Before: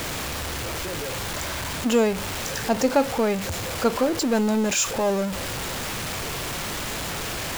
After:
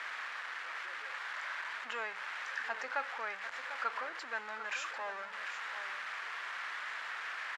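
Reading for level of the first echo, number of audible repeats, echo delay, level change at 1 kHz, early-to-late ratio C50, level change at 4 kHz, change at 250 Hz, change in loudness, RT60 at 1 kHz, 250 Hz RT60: -11.0 dB, 1, 746 ms, -10.5 dB, no reverb, -16.5 dB, -39.0 dB, -14.5 dB, no reverb, no reverb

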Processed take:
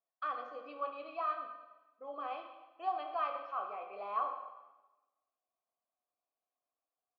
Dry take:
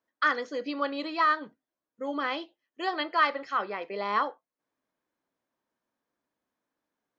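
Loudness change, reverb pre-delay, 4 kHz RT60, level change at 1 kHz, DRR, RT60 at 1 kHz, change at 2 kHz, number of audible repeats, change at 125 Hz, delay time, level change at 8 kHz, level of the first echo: -10.0 dB, 7 ms, 1.0 s, -8.0 dB, 3.5 dB, 1.1 s, -20.0 dB, 1, no reading, 125 ms, no reading, -14.5 dB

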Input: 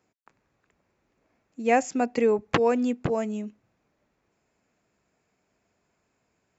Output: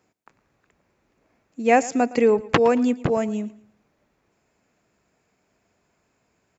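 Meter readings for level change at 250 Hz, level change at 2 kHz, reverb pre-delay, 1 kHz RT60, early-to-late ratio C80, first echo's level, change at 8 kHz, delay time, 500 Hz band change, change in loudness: +4.5 dB, +4.5 dB, no reverb, no reverb, no reverb, -19.5 dB, no reading, 113 ms, +4.5 dB, +4.5 dB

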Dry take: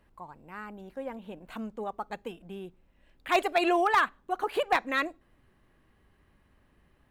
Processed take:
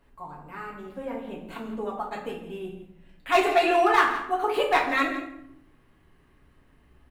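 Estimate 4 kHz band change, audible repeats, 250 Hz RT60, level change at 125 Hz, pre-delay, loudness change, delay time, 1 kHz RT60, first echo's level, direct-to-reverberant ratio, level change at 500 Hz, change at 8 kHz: +4.0 dB, 1, 1.1 s, no reading, 4 ms, +4.5 dB, 167 ms, 0.75 s, -13.5 dB, -5.0 dB, +5.5 dB, +4.0 dB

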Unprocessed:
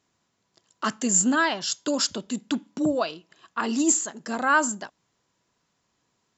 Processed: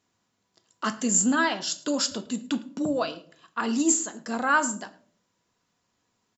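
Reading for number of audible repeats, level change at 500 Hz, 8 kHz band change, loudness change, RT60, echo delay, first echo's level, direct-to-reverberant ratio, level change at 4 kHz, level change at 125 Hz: 1, -1.5 dB, no reading, -1.0 dB, 0.50 s, 108 ms, -22.0 dB, 9.0 dB, -1.5 dB, -1.0 dB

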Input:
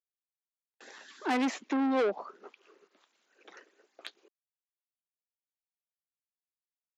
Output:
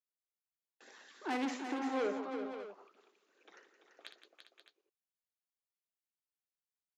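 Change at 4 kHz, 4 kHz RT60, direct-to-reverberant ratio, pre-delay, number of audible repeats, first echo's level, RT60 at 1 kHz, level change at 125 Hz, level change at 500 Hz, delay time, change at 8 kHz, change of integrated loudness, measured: -5.5 dB, no reverb, no reverb, no reverb, 6, -9.0 dB, no reverb, no reading, -6.0 dB, 58 ms, no reading, -8.0 dB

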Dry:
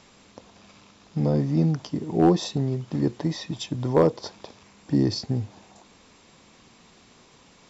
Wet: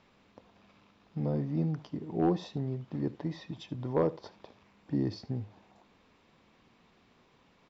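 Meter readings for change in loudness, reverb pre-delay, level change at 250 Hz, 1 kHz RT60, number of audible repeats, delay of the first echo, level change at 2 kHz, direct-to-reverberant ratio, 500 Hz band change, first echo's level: -9.0 dB, no reverb, -9.0 dB, no reverb, 1, 76 ms, -9.5 dB, no reverb, -9.0 dB, -19.0 dB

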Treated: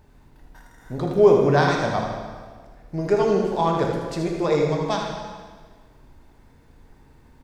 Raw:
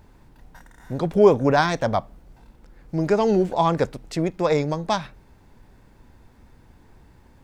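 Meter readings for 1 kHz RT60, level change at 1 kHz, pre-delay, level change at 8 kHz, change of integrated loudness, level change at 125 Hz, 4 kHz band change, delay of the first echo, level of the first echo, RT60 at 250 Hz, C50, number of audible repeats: 1.5 s, -0.5 dB, 3 ms, -0.5 dB, +0.5 dB, +0.5 dB, -0.5 dB, 79 ms, -7.0 dB, 1.6 s, 1.5 dB, 2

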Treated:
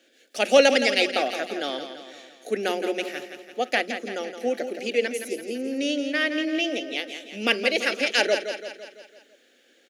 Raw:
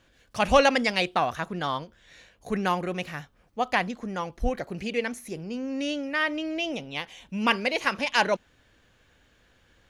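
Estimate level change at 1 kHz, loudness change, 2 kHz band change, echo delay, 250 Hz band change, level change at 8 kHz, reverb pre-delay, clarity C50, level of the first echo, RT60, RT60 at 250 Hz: -4.0 dB, +2.5 dB, +2.5 dB, 168 ms, +1.5 dB, +6.0 dB, no reverb, no reverb, -9.0 dB, no reverb, no reverb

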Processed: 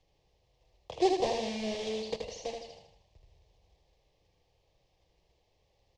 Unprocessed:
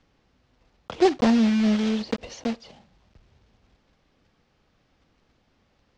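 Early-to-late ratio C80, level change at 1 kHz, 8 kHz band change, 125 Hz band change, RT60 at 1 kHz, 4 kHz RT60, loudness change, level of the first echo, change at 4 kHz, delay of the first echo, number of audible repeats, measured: no reverb, -4.5 dB, no reading, -16.0 dB, no reverb, no reverb, -10.0 dB, -4.5 dB, -4.5 dB, 78 ms, 5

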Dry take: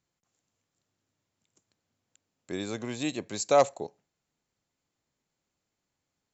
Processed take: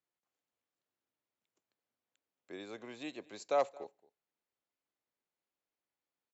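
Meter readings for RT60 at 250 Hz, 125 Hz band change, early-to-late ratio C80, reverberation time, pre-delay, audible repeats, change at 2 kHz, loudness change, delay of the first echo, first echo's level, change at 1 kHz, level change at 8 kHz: no reverb, -21.0 dB, no reverb, no reverb, no reverb, 1, -9.5 dB, -9.5 dB, 224 ms, -23.0 dB, -9.0 dB, no reading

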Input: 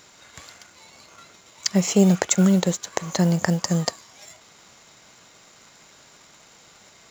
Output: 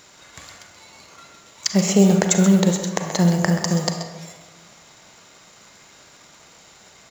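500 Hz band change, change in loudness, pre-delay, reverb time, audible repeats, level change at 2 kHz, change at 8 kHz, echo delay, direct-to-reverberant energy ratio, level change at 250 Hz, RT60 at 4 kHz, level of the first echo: +3.0 dB, +2.5 dB, 33 ms, 1.3 s, 1, +3.0 dB, no reading, 129 ms, 4.5 dB, +2.5 dB, 0.75 s, -12.0 dB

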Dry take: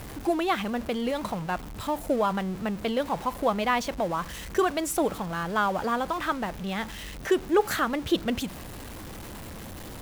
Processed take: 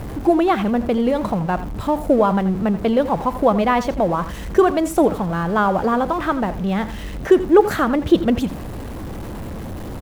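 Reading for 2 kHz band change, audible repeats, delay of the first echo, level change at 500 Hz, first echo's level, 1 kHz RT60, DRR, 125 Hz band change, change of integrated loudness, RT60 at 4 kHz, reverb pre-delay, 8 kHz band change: +4.0 dB, 1, 84 ms, +10.0 dB, -14.0 dB, no reverb, no reverb, +11.5 dB, +9.5 dB, no reverb, no reverb, -1.0 dB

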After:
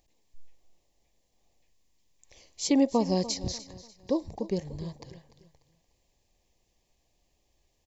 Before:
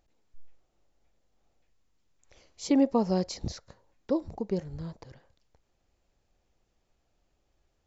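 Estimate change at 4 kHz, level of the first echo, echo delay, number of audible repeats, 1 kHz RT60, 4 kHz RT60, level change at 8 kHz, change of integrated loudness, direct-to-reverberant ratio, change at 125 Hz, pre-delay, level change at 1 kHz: +6.5 dB, -16.0 dB, 295 ms, 3, no reverb, no reverb, no reading, +0.5 dB, no reverb, 0.0 dB, no reverb, +0.5 dB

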